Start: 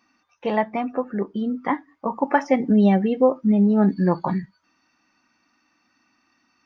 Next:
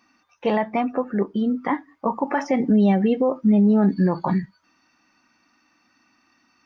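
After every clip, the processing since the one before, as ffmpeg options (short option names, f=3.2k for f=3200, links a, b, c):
-af "alimiter=limit=-14dB:level=0:latency=1:release=45,volume=3dB"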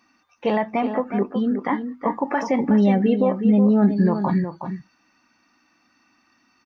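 -filter_complex "[0:a]asplit=2[a][b];[b]adelay=367.3,volume=-8dB,highshelf=f=4k:g=-8.27[c];[a][c]amix=inputs=2:normalize=0"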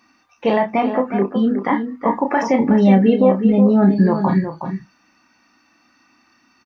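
-filter_complex "[0:a]asplit=2[a][b];[b]adelay=31,volume=-6.5dB[c];[a][c]amix=inputs=2:normalize=0,volume=4dB"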